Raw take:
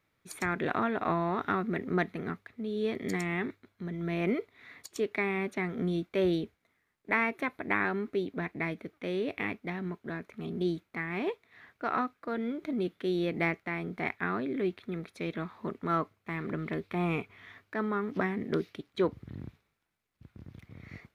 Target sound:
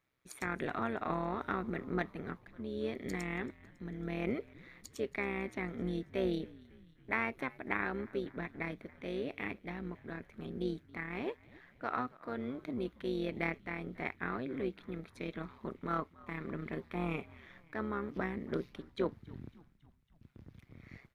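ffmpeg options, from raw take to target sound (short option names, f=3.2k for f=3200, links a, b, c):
-filter_complex "[0:a]tremolo=f=130:d=0.667,asplit=6[a][b][c][d][e][f];[b]adelay=276,afreqshift=-83,volume=-22dB[g];[c]adelay=552,afreqshift=-166,volume=-26.2dB[h];[d]adelay=828,afreqshift=-249,volume=-30.3dB[i];[e]adelay=1104,afreqshift=-332,volume=-34.5dB[j];[f]adelay=1380,afreqshift=-415,volume=-38.6dB[k];[a][g][h][i][j][k]amix=inputs=6:normalize=0,volume=-3dB"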